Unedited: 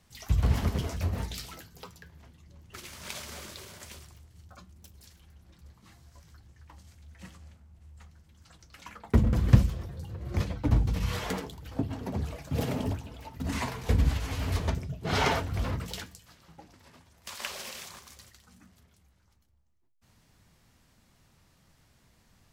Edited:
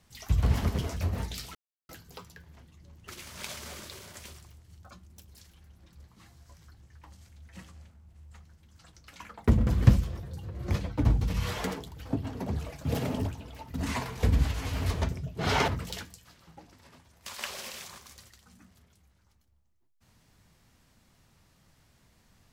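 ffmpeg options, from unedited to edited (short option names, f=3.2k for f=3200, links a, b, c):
-filter_complex "[0:a]asplit=3[a][b][c];[a]atrim=end=1.55,asetpts=PTS-STARTPTS,afade=t=out:st=1.546:d=0.004:c=hsin,apad=pad_dur=0.34[d];[b]atrim=start=1.55:end=15.342,asetpts=PTS-STARTPTS,afade=t=in:d=0.004:c=hsin[e];[c]atrim=start=15.688[f];[d][e]concat=n=2:v=0:a=1[g];[g][f]acrossfade=d=0.004:c1=hsin:c2=hsin"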